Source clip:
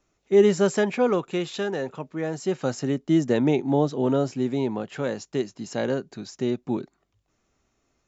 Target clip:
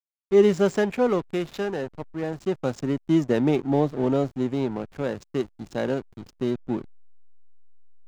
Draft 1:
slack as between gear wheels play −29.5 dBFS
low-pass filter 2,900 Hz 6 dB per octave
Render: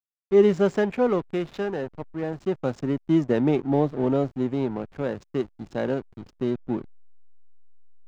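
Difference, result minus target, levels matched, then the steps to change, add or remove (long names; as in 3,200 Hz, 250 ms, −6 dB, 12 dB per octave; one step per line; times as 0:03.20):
4,000 Hz band −3.5 dB
remove: low-pass filter 2,900 Hz 6 dB per octave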